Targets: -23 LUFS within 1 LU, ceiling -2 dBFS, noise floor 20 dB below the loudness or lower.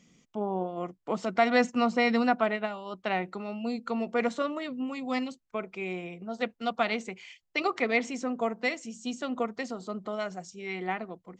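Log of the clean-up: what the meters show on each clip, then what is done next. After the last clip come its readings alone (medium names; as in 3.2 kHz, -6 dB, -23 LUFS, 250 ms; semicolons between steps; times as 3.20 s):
loudness -31.0 LUFS; peak level -9.0 dBFS; loudness target -23.0 LUFS
-> trim +8 dB; peak limiter -2 dBFS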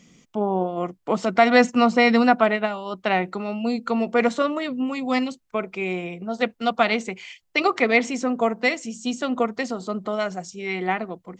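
loudness -23.0 LUFS; peak level -2.0 dBFS; noise floor -62 dBFS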